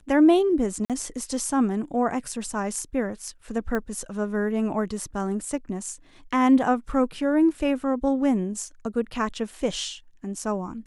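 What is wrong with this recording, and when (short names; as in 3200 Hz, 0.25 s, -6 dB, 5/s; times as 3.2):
0.85–0.9 gap 47 ms
3.75 pop -16 dBFS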